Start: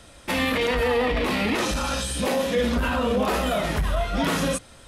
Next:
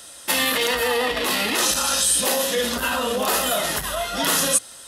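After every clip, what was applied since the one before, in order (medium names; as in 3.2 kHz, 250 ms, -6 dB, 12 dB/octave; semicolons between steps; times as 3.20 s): RIAA curve recording; band-stop 2.3 kHz, Q 6.5; trim +2 dB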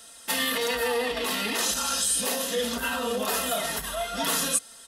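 comb 4.4 ms; trim -7.5 dB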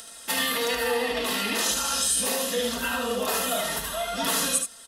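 upward compressor, threshold -39 dBFS; on a send: delay 75 ms -5.5 dB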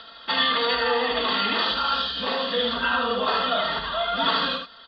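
rippled Chebyshev low-pass 4.7 kHz, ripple 9 dB; trim +9 dB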